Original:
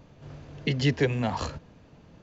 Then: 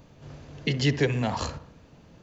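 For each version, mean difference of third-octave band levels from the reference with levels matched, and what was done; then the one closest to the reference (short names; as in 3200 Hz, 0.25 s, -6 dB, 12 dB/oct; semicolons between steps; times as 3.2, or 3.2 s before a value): 1.5 dB: high shelf 5300 Hz +7.5 dB; on a send: dark delay 64 ms, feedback 51%, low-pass 2000 Hz, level -13 dB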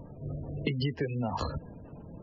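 8.0 dB: spectral gate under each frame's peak -20 dB strong; compressor 16:1, threshold -34 dBFS, peak gain reduction 17 dB; gain +7 dB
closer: first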